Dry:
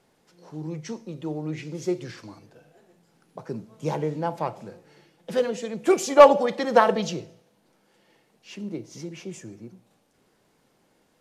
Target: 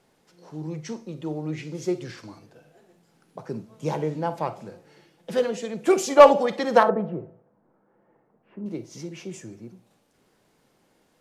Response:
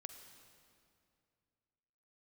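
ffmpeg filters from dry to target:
-filter_complex "[0:a]asettb=1/sr,asplit=3[a][b][c];[a]atrim=end=6.834[d];[b]atrim=start=6.83:end=8.66,asetpts=PTS-STARTPTS,afade=t=in:d=0.004:c=qsin,afade=t=out:st=1.826:d=0.004:c=qsin,lowpass=f=1.4k:w=0.5412,lowpass=f=1.4k:w=1.3066[e];[c]atrim=start=8.656[f];[d][e]acrossfade=d=0.004:c1=hsin:c2=qsin[g];[g][f]acrossfade=d=0.004:c1=qsin:c2=hsin[h];[1:a]atrim=start_sample=2205,atrim=end_sample=3087[i];[h][i]afir=irnorm=-1:irlink=0,volume=6dB"

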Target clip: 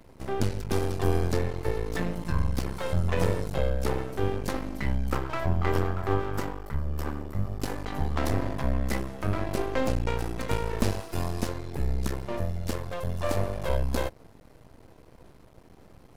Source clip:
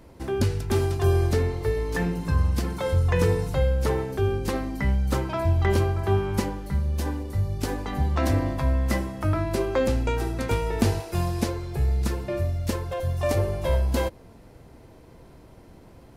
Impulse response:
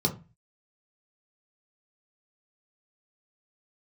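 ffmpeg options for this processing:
-filter_complex "[0:a]asettb=1/sr,asplit=3[a][b][c];[a]atrim=end=5.104[d];[b]atrim=start=5.1:end=7.63,asetpts=PTS-STARTPTS,afade=t=in:d=0.004:c=qsin,afade=t=out:st=2.526:d=0.004:c=qsin,equalizer=f=200:t=o:w=0.33:g=-10,equalizer=f=1.25k:t=o:w=0.33:g=8,equalizer=f=2.5k:t=o:w=0.33:g=-5,equalizer=f=4k:t=o:w=0.33:g=-9,equalizer=f=6.3k:t=o:w=0.33:g=-6,equalizer=f=10k:t=o:w=0.33:g=-10[e];[c]atrim=start=7.626[f];[d][e]acrossfade=d=0.004:c1=hsin:c2=qsin[g];[g][f]acrossfade=d=0.004:c1=qsin:c2=hsin,aeval=exprs='max(val(0),0)':c=same"

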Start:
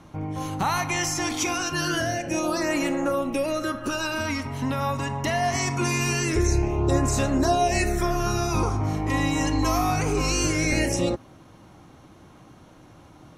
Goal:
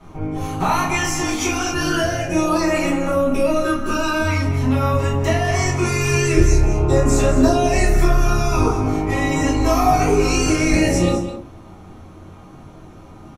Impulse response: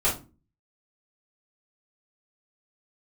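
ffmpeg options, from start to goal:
-filter_complex "[0:a]asplit=2[a][b];[b]adelay=22,volume=-12dB[c];[a][c]amix=inputs=2:normalize=0,aecho=1:1:205:0.266[d];[1:a]atrim=start_sample=2205[e];[d][e]afir=irnorm=-1:irlink=0,volume=-6.5dB"

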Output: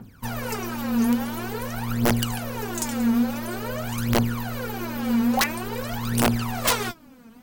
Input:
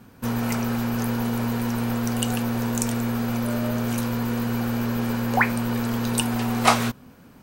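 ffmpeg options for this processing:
-af "aphaser=in_gain=1:out_gain=1:delay=4.5:decay=0.79:speed=0.48:type=triangular,aeval=exprs='(mod(2.37*val(0)+1,2)-1)/2.37':c=same,volume=-5dB"

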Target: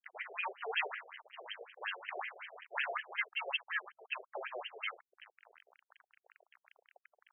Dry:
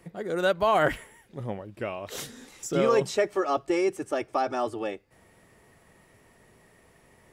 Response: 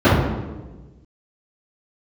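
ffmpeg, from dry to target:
-filter_complex "[0:a]acrossover=split=210|3000[a][b][c];[b]acompressor=threshold=-36dB:ratio=4[d];[a][d][c]amix=inputs=3:normalize=0,asplit=2[e][f];[f]adelay=632,lowpass=f=1.6k:p=1,volume=-22.5dB,asplit=2[g][h];[h]adelay=632,lowpass=f=1.6k:p=1,volume=0.21[i];[e][g][i]amix=inputs=3:normalize=0,asplit=2[j][k];[k]asoftclip=type=tanh:threshold=-28dB,volume=-4dB[l];[j][l]amix=inputs=2:normalize=0,equalizer=f=1.5k:w=0.61:g=6,lowpass=f=3.3k:t=q:w=0.5098,lowpass=f=3.3k:t=q:w=0.6013,lowpass=f=3.3k:t=q:w=0.9,lowpass=f=3.3k:t=q:w=2.563,afreqshift=-3900,areverse,acompressor=mode=upward:threshold=-47dB:ratio=2.5,areverse,acrusher=bits=4:dc=4:mix=0:aa=0.000001,afftfilt=real='re*between(b*sr/1024,510*pow(2300/510,0.5+0.5*sin(2*PI*5.4*pts/sr))/1.41,510*pow(2300/510,0.5+0.5*sin(2*PI*5.4*pts/sr))*1.41)':imag='im*between(b*sr/1024,510*pow(2300/510,0.5+0.5*sin(2*PI*5.4*pts/sr))/1.41,510*pow(2300/510,0.5+0.5*sin(2*PI*5.4*pts/sr))*1.41)':win_size=1024:overlap=0.75,volume=6dB"

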